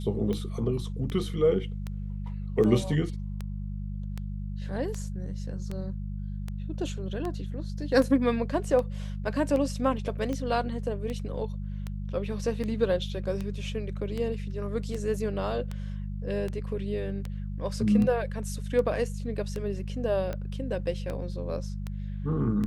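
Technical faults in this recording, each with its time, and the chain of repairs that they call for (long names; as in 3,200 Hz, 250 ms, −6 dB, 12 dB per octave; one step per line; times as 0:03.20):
mains hum 50 Hz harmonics 4 −34 dBFS
scratch tick 78 rpm −21 dBFS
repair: click removal
hum removal 50 Hz, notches 4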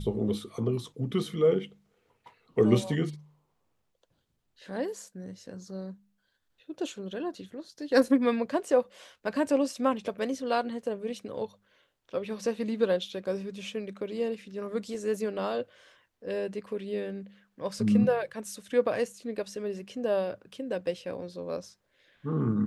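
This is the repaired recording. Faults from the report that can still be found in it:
none of them is left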